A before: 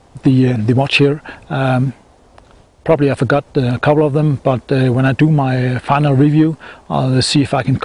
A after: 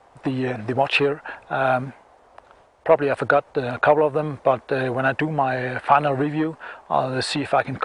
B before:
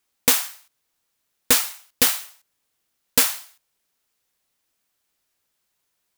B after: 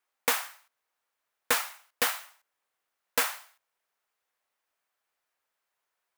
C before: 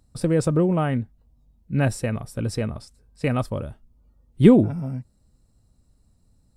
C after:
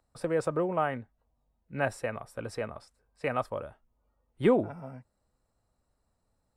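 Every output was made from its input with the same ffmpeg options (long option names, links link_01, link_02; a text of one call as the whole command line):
ffmpeg -i in.wav -filter_complex "[0:a]acrossover=split=490 2200:gain=0.141 1 0.251[link_01][link_02][link_03];[link_01][link_02][link_03]amix=inputs=3:normalize=0" out.wav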